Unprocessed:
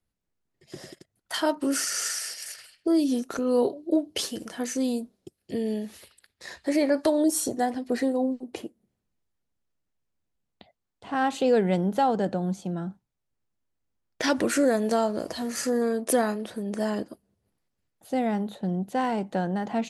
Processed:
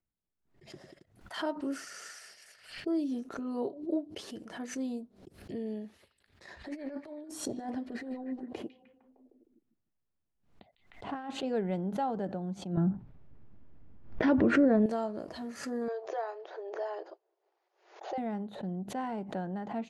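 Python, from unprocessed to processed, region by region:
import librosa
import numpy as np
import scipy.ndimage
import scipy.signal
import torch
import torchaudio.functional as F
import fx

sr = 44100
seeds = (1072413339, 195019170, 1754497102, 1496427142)

y = fx.chain(x, sr, fx.high_shelf(hz=9800.0, db=-4.0),
    fx.over_compress(threshold_db=-28.0, ratio=-0.5),
    fx.echo_stepped(ms=153, hz=3000.0, octaves=-0.7, feedback_pct=70, wet_db=-10.5), at=(6.48, 11.43))
y = fx.chain(y, sr, fx.lowpass(hz=2800.0, slope=12),
    fx.low_shelf(hz=460.0, db=11.5),
    fx.env_flatten(amount_pct=50), at=(12.77, 14.86))
y = fx.chain(y, sr, fx.brickwall_bandpass(low_hz=330.0, high_hz=7100.0),
    fx.peak_eq(hz=800.0, db=7.0, octaves=0.66),
    fx.band_squash(depth_pct=70), at=(15.88, 18.18))
y = fx.lowpass(y, sr, hz=1700.0, slope=6)
y = fx.notch(y, sr, hz=500.0, q=15.0)
y = fx.pre_swell(y, sr, db_per_s=110.0)
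y = F.gain(torch.from_numpy(y), -8.5).numpy()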